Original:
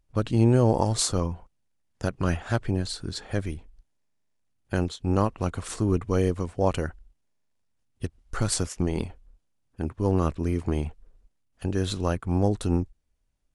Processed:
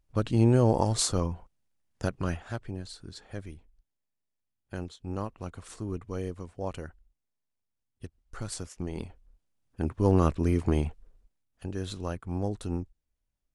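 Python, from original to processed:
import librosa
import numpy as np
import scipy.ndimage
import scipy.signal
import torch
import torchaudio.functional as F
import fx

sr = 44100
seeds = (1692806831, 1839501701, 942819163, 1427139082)

y = fx.gain(x, sr, db=fx.line((2.06, -2.0), (2.61, -11.0), (8.65, -11.0), (9.95, 1.0), (10.77, 1.0), (11.67, -8.0)))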